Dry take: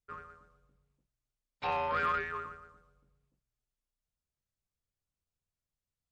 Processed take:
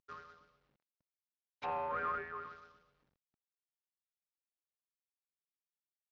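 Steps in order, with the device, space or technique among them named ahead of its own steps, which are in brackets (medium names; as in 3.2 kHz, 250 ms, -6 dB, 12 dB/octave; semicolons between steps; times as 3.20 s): early wireless headset (high-pass 180 Hz 6 dB/octave; CVSD coder 32 kbps); low-pass that closes with the level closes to 1.6 kHz, closed at -33.5 dBFS; distance through air 99 m; trim -3.5 dB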